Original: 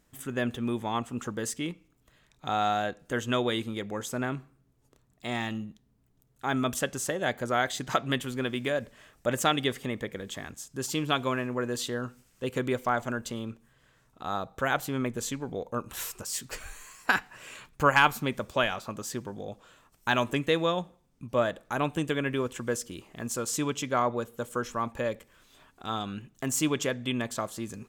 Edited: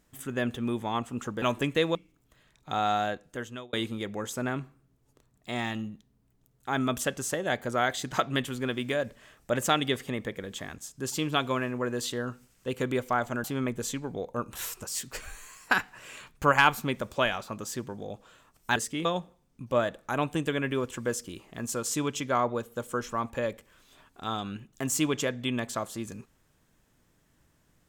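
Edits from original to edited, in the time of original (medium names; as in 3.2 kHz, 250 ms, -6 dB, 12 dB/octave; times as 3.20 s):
1.42–1.71 s: swap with 20.14–20.67 s
2.82–3.49 s: fade out
13.20–14.82 s: delete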